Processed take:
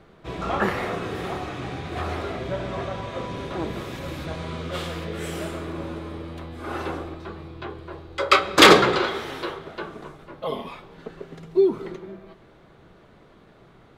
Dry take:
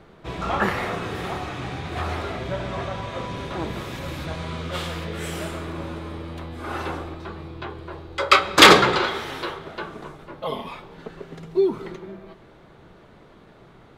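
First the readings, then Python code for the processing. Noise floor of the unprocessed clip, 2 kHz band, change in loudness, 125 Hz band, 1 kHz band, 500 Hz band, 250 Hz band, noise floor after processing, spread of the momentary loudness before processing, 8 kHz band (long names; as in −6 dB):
−50 dBFS, −2.0 dB, −1.5 dB, −1.5 dB, −2.0 dB, +1.0 dB, +0.5 dB, −53 dBFS, 19 LU, −2.5 dB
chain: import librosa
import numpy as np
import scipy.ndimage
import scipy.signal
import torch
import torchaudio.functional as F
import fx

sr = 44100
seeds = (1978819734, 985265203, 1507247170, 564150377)

y = fx.notch(x, sr, hz=890.0, q=23.0)
y = fx.dynamic_eq(y, sr, hz=380.0, q=0.75, threshold_db=-37.0, ratio=4.0, max_db=4)
y = F.gain(torch.from_numpy(y), -2.5).numpy()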